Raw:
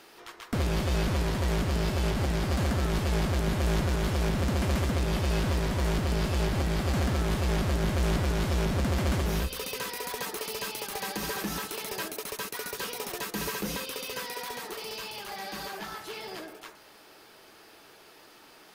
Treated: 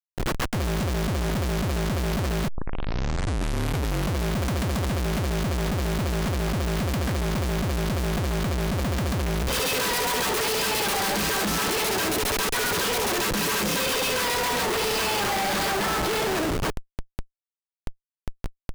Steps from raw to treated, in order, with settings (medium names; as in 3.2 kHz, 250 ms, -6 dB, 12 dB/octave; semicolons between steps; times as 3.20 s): 13.29–13.90 s: high-pass 150 Hz 12 dB/octave; Schmitt trigger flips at -42.5 dBFS; 2.48 s: tape start 1.75 s; trim +4.5 dB